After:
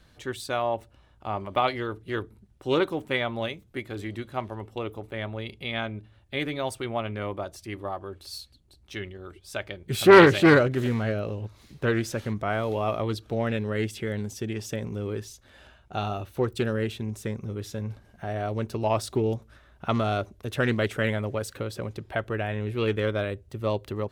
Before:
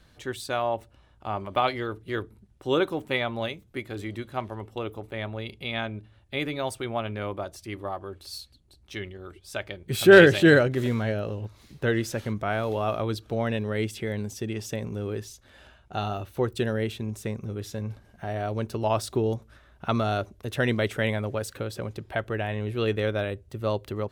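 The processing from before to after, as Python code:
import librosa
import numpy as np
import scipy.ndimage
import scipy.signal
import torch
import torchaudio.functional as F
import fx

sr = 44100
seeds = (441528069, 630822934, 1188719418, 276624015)

y = fx.doppler_dist(x, sr, depth_ms=0.3)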